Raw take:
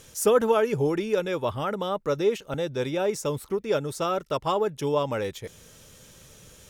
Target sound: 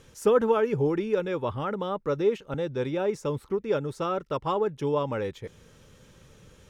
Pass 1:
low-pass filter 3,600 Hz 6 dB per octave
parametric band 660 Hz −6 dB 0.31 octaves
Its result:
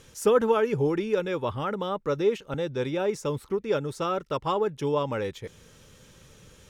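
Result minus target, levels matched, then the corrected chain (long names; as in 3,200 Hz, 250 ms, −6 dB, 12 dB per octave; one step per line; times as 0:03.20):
4,000 Hz band +3.5 dB
low-pass filter 1,800 Hz 6 dB per octave
parametric band 660 Hz −6 dB 0.31 octaves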